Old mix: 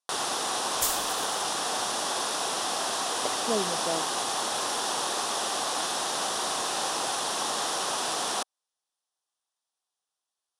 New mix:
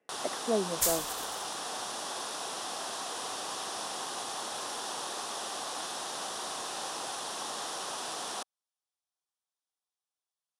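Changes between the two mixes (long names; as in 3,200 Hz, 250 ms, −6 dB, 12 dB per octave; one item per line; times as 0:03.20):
speech: entry −3.00 s
first sound −8.0 dB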